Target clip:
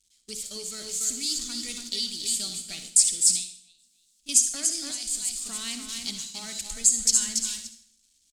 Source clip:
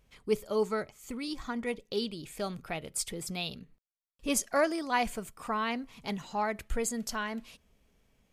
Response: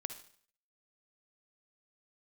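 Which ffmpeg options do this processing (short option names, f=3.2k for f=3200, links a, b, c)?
-filter_complex "[0:a]aeval=exprs='val(0)+0.5*0.00944*sgn(val(0))':c=same,aecho=1:1:284|568|852|1136:0.501|0.16|0.0513|0.0164,asettb=1/sr,asplit=3[a][b][c];[a]atrim=end=3.354[d];[b]atrim=start=3.35:end=4.29,asetpts=PTS-STARTPTS,afade=t=in:d=0.004:c=qsin,afade=t=out:st=0.936:d=0.004:c=qsin,acompressor=threshold=-38dB:ratio=6[e];[c]atrim=start=4.286[f];[d][e]acrossfade=d=0.004:c1=hsin:c2=qsin[g];[g][f]acrossfade=d=0.004:c1=qsin:c2=hsin,agate=range=-27dB:threshold=-37dB:ratio=16:detection=peak,alimiter=limit=-21dB:level=0:latency=1:release=262,equalizer=f=125:t=o:w=1:g=-10,equalizer=f=250:t=o:w=1:g=5,equalizer=f=500:t=o:w=1:g=-10,equalizer=f=1k:t=o:w=1:g=-11,equalizer=f=2k:t=o:w=1:g=-3,equalizer=f=4k:t=o:w=1:g=8,equalizer=f=8k:t=o:w=1:g=12,asettb=1/sr,asplit=3[h][i][j];[h]atrim=end=4.914[k];[i]atrim=start=4.91:end=5.45,asetpts=PTS-STARTPTS,afade=t=in:d=0.004:c=qsin,afade=t=out:st=0.536:d=0.004:c=qsin,acrossover=split=130|3000[l][m][n];[m]acompressor=threshold=-45dB:ratio=6[o];[l][o][n]amix=inputs=3:normalize=0[p];[j]atrim=start=5.446[q];[k][p]acrossfade=d=0.004:c1=hsin:c2=qsin[r];[r][q]acrossfade=d=0.004:c1=qsin:c2=hsin,equalizer=f=6.9k:w=0.51:g=14[s];[1:a]atrim=start_sample=2205[t];[s][t]afir=irnorm=-1:irlink=0,volume=-5.5dB"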